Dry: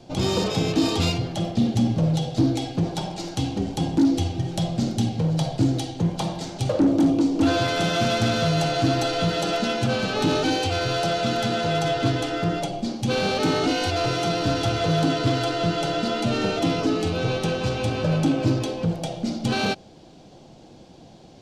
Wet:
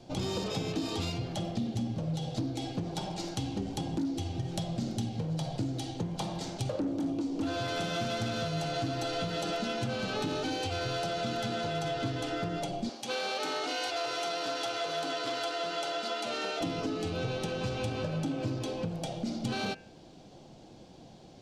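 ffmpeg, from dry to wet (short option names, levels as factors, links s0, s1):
-filter_complex "[0:a]asettb=1/sr,asplit=3[s0][s1][s2];[s0]atrim=end=12.894[s3];[s1]atrim=start=12.89:end=16.61,asetpts=PTS-STARTPTS,afade=t=in:d=0.004:c=qsin,afade=t=out:st=3.716:d=0.004:c=qsin,highpass=550[s4];[s2]atrim=start=16.606[s5];[s3][s4]acrossfade=d=0.004:c1=hsin:c2=qsin[s6];[s6][s5]acrossfade=d=0.004:c1=qsin:c2=hsin,acompressor=threshold=0.0562:ratio=6,bandreject=f=82.65:t=h:w=4,bandreject=f=165.3:t=h:w=4,bandreject=f=247.95:t=h:w=4,bandreject=f=330.6:t=h:w=4,bandreject=f=413.25:t=h:w=4,bandreject=f=495.9:t=h:w=4,bandreject=f=578.55:t=h:w=4,bandreject=f=661.2:t=h:w=4,bandreject=f=743.85:t=h:w=4,bandreject=f=826.5:t=h:w=4,bandreject=f=909.15:t=h:w=4,bandreject=f=991.8:t=h:w=4,bandreject=f=1074.45:t=h:w=4,bandreject=f=1157.1:t=h:w=4,bandreject=f=1239.75:t=h:w=4,bandreject=f=1322.4:t=h:w=4,bandreject=f=1405.05:t=h:w=4,bandreject=f=1487.7:t=h:w=4,bandreject=f=1570.35:t=h:w=4,bandreject=f=1653:t=h:w=4,bandreject=f=1735.65:t=h:w=4,bandreject=f=1818.3:t=h:w=4,bandreject=f=1900.95:t=h:w=4,bandreject=f=1983.6:t=h:w=4,bandreject=f=2066.25:t=h:w=4,bandreject=f=2148.9:t=h:w=4,bandreject=f=2231.55:t=h:w=4,bandreject=f=2314.2:t=h:w=4,bandreject=f=2396.85:t=h:w=4,bandreject=f=2479.5:t=h:w=4,bandreject=f=2562.15:t=h:w=4,bandreject=f=2644.8:t=h:w=4,bandreject=f=2727.45:t=h:w=4,bandreject=f=2810.1:t=h:w=4,bandreject=f=2892.75:t=h:w=4,volume=0.596"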